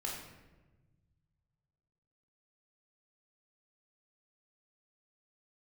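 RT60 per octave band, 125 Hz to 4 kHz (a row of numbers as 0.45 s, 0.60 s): 2.9 s, 1.9 s, 1.3 s, 1.0 s, 1.0 s, 0.75 s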